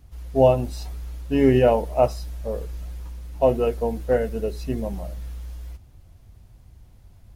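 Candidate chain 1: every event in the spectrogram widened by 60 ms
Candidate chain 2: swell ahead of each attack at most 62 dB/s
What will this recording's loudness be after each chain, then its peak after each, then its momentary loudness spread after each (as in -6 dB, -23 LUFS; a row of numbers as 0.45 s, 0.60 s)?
-19.5 LUFS, -22.0 LUFS; -2.5 dBFS, -4.5 dBFS; 20 LU, 18 LU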